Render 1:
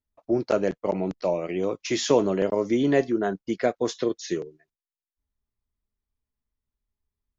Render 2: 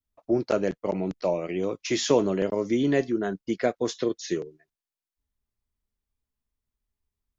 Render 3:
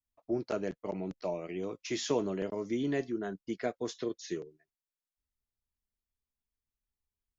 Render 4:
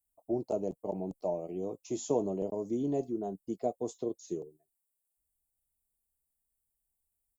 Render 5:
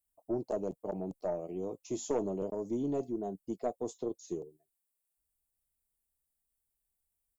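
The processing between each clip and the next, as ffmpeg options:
ffmpeg -i in.wav -af "adynamicequalizer=threshold=0.0158:dfrequency=780:dqfactor=0.8:tfrequency=780:tqfactor=0.8:attack=5:release=100:ratio=0.375:range=3:mode=cutabove:tftype=bell" out.wav
ffmpeg -i in.wav -af "bandreject=frequency=530:width=12,volume=-8.5dB" out.wav
ffmpeg -i in.wav -af "firequalizer=gain_entry='entry(350,0);entry(780,4);entry(1600,-29);entry(2600,-16);entry(5700,-10);entry(8100,13)':delay=0.05:min_phase=1" out.wav
ffmpeg -i in.wav -af "aeval=exprs='0.15*(cos(1*acos(clip(val(0)/0.15,-1,1)))-cos(1*PI/2))+0.0237*(cos(2*acos(clip(val(0)/0.15,-1,1)))-cos(2*PI/2))+0.00841*(cos(5*acos(clip(val(0)/0.15,-1,1)))-cos(5*PI/2))':channel_layout=same,volume=-3dB" out.wav

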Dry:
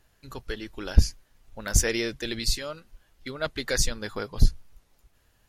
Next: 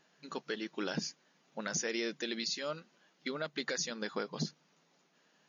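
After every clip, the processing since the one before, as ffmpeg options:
ffmpeg -i in.wav -af "afftfilt=real='re*between(b*sr/4096,150,7000)':imag='im*between(b*sr/4096,150,7000)':win_size=4096:overlap=0.75,alimiter=level_in=0.5dB:limit=-24dB:level=0:latency=1:release=239,volume=-0.5dB" out.wav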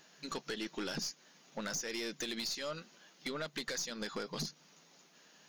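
ffmpeg -i in.wav -af "highshelf=frequency=4200:gain=10.5,acompressor=threshold=-37dB:ratio=10,aeval=exprs='(tanh(79.4*val(0)+0.25)-tanh(0.25))/79.4':channel_layout=same,volume=5.5dB" out.wav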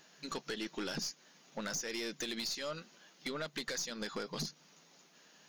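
ffmpeg -i in.wav -af anull out.wav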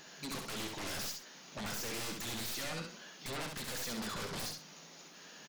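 ffmpeg -i in.wav -filter_complex "[0:a]aeval=exprs='0.0299*sin(PI/2*3.55*val(0)/0.0299)':channel_layout=same,asplit=2[link_01][link_02];[link_02]aecho=0:1:67|131:0.631|0.168[link_03];[link_01][link_03]amix=inputs=2:normalize=0,volume=-7.5dB" out.wav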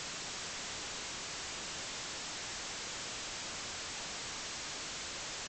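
ffmpeg -i in.wav -af "highpass=frequency=93:poles=1,acompressor=threshold=-45dB:ratio=6,aresample=16000,aeval=exprs='(mod(473*val(0)+1,2)-1)/473':channel_layout=same,aresample=44100,volume=16dB" out.wav

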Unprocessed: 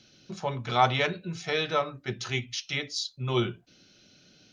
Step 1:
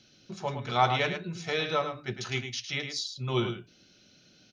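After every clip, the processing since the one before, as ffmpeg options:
ffmpeg -i in.wav -af "aecho=1:1:106:0.398,volume=-2dB" out.wav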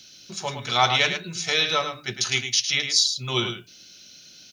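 ffmpeg -i in.wav -af "crystalizer=i=7.5:c=0" out.wav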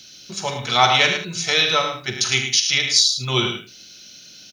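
ffmpeg -i in.wav -af "aecho=1:1:46|76:0.282|0.282,volume=4dB" out.wav

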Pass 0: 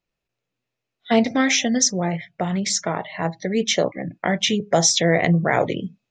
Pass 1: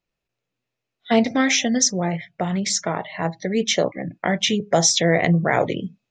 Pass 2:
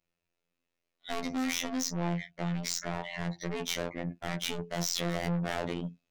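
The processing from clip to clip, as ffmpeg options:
ffmpeg -i in.wav -af anull out.wav
ffmpeg -i in.wav -af "aeval=exprs='(tanh(25.1*val(0)+0.1)-tanh(0.1))/25.1':channel_layout=same,afftfilt=real='hypot(re,im)*cos(PI*b)':imag='0':win_size=2048:overlap=0.75" out.wav

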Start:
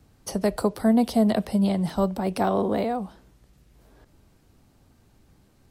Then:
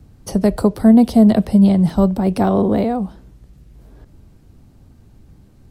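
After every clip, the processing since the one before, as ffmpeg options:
ffmpeg -i in.wav -af "lowshelf=frequency=350:gain=12,volume=2dB" out.wav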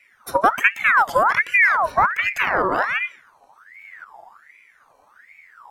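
ffmpeg -i in.wav -af "afftfilt=real='re*pow(10,19/40*sin(2*PI*(1.8*log(max(b,1)*sr/1024/100)/log(2)-(-0.62)*(pts-256)/sr)))':imag='im*pow(10,19/40*sin(2*PI*(1.8*log(max(b,1)*sr/1024/100)/log(2)-(-0.62)*(pts-256)/sr)))':win_size=1024:overlap=0.75,aeval=exprs='val(0)*sin(2*PI*1500*n/s+1500*0.5/1.3*sin(2*PI*1.3*n/s))':channel_layout=same,volume=-4dB" out.wav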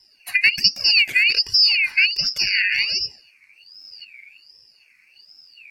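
ffmpeg -i in.wav -af "afftfilt=real='real(if(lt(b,272),68*(eq(floor(b/68),0)*2+eq(floor(b/68),1)*0+eq(floor(b/68),2)*3+eq(floor(b/68),3)*1)+mod(b,68),b),0)':imag='imag(if(lt(b,272),68*(eq(floor(b/68),0)*2+eq(floor(b/68),1)*0+eq(floor(b/68),2)*3+eq(floor(b/68),3)*1)+mod(b,68),b),0)':win_size=2048:overlap=0.75" out.wav

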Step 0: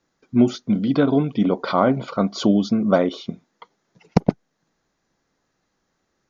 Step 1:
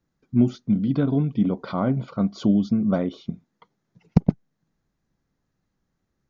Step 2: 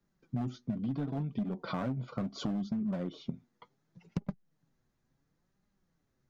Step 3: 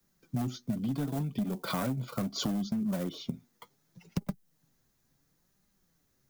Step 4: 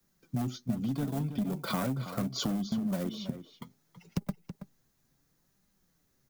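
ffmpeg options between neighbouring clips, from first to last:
ffmpeg -i in.wav -af "bass=frequency=250:gain=14,treble=frequency=4000:gain=-2,volume=-10dB" out.wav
ffmpeg -i in.wav -filter_complex "[0:a]acrossover=split=130[link_01][link_02];[link_02]volume=19.5dB,asoftclip=hard,volume=-19.5dB[link_03];[link_01][link_03]amix=inputs=2:normalize=0,flanger=delay=4.9:depth=3.4:regen=42:speed=0.71:shape=sinusoidal,acompressor=threshold=-33dB:ratio=12,volume=2dB" out.wav
ffmpeg -i in.wav -filter_complex "[0:a]acrossover=split=270|400|2400[link_01][link_02][link_03][link_04];[link_03]acrusher=bits=4:mode=log:mix=0:aa=0.000001[link_05];[link_01][link_02][link_05][link_04]amix=inputs=4:normalize=0,crystalizer=i=3:c=0,volume=2dB" out.wav
ffmpeg -i in.wav -filter_complex "[0:a]asplit=2[link_01][link_02];[link_02]adelay=326.5,volume=-11dB,highshelf=frequency=4000:gain=-7.35[link_03];[link_01][link_03]amix=inputs=2:normalize=0" out.wav

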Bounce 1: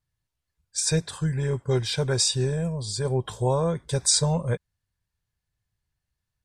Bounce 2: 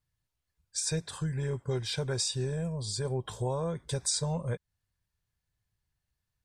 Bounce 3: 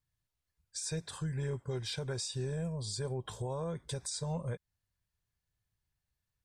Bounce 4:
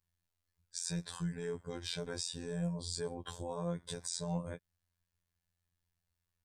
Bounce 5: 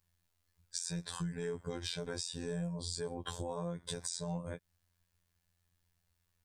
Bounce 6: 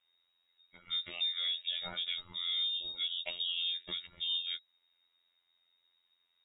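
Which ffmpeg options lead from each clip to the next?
ffmpeg -i in.wav -af "acompressor=threshold=-32dB:ratio=2,volume=-1.5dB" out.wav
ffmpeg -i in.wav -af "alimiter=level_in=1.5dB:limit=-24dB:level=0:latency=1:release=96,volume=-1.5dB,volume=-3dB" out.wav
ffmpeg -i in.wav -af "afftfilt=real='hypot(re,im)*cos(PI*b)':imag='0':win_size=2048:overlap=0.75,volume=2.5dB" out.wav
ffmpeg -i in.wav -af "acompressor=threshold=-42dB:ratio=6,volume=7dB" out.wav
ffmpeg -i in.wav -af "lowpass=frequency=3200:width_type=q:width=0.5098,lowpass=frequency=3200:width_type=q:width=0.6013,lowpass=frequency=3200:width_type=q:width=0.9,lowpass=frequency=3200:width_type=q:width=2.563,afreqshift=-3800,volume=3.5dB" out.wav

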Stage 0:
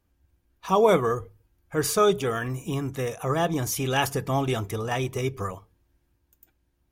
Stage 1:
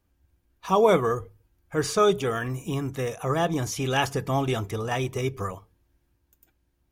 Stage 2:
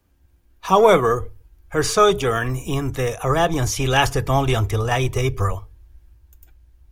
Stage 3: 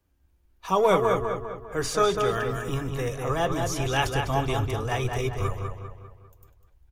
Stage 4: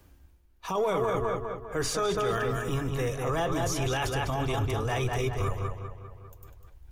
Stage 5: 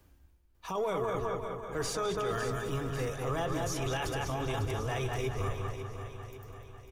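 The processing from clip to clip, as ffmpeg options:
ffmpeg -i in.wav -filter_complex "[0:a]acrossover=split=8000[link_01][link_02];[link_02]acompressor=threshold=-47dB:ratio=4:attack=1:release=60[link_03];[link_01][link_03]amix=inputs=2:normalize=0" out.wav
ffmpeg -i in.wav -filter_complex "[0:a]acrossover=split=180|440|2100[link_01][link_02][link_03][link_04];[link_02]asoftclip=type=tanh:threshold=-27dB[link_05];[link_01][link_05][link_03][link_04]amix=inputs=4:normalize=0,asubboost=boost=11:cutoff=58,volume=7.5dB" out.wav
ffmpeg -i in.wav -filter_complex "[0:a]flanger=delay=1.9:depth=3.9:regen=-85:speed=1.3:shape=sinusoidal,asplit=2[link_01][link_02];[link_02]adelay=199,lowpass=frequency=3800:poles=1,volume=-4.5dB,asplit=2[link_03][link_04];[link_04]adelay=199,lowpass=frequency=3800:poles=1,volume=0.47,asplit=2[link_05][link_06];[link_06]adelay=199,lowpass=frequency=3800:poles=1,volume=0.47,asplit=2[link_07][link_08];[link_08]adelay=199,lowpass=frequency=3800:poles=1,volume=0.47,asplit=2[link_09][link_10];[link_10]adelay=199,lowpass=frequency=3800:poles=1,volume=0.47,asplit=2[link_11][link_12];[link_12]adelay=199,lowpass=frequency=3800:poles=1,volume=0.47[link_13];[link_03][link_05][link_07][link_09][link_11][link_13]amix=inputs=6:normalize=0[link_14];[link_01][link_14]amix=inputs=2:normalize=0,volume=-3.5dB" out.wav
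ffmpeg -i in.wav -af "alimiter=limit=-20dB:level=0:latency=1:release=11,areverse,acompressor=mode=upward:threshold=-40dB:ratio=2.5,areverse" out.wav
ffmpeg -i in.wav -af "aecho=1:1:548|1096|1644|2192|2740|3288:0.316|0.161|0.0823|0.0419|0.0214|0.0109,volume=-5dB" out.wav

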